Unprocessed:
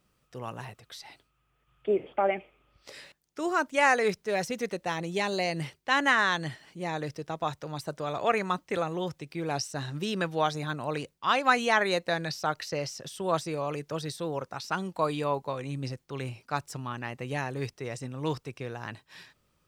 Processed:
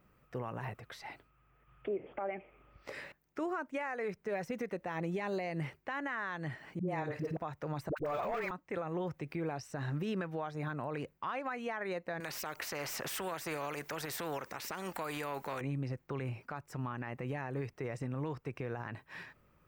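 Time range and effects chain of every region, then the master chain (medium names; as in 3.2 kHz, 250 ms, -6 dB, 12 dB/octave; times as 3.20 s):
6.79–7.37 s: phase dispersion highs, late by 90 ms, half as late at 400 Hz + flutter echo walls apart 8.7 m, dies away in 0.22 s
7.89–8.51 s: peaking EQ 160 Hz -13 dB 1.4 oct + waveshaping leveller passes 5 + phase dispersion highs, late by 78 ms, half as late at 580 Hz
12.20–15.61 s: tone controls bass -12 dB, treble +5 dB + spectrum-flattening compressor 2:1
whole clip: high-order bell 6.2 kHz -13.5 dB 2.3 oct; compression 10:1, threshold -36 dBFS; peak limiter -32.5 dBFS; trim +4.5 dB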